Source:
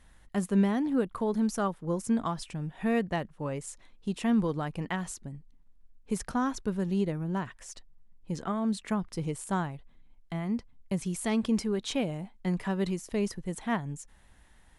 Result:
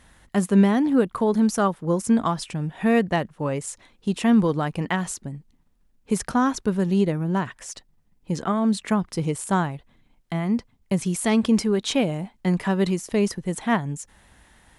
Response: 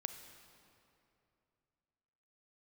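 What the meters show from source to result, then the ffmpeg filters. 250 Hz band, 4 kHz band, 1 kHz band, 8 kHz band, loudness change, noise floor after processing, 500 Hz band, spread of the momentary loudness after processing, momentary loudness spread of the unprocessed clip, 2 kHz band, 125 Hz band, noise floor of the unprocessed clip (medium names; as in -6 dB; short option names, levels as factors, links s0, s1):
+8.0 dB, +8.5 dB, +8.5 dB, +8.5 dB, +8.0 dB, -63 dBFS, +8.5 dB, 12 LU, 12 LU, +8.5 dB, +7.5 dB, -59 dBFS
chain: -af "highpass=f=77:p=1,volume=2.66"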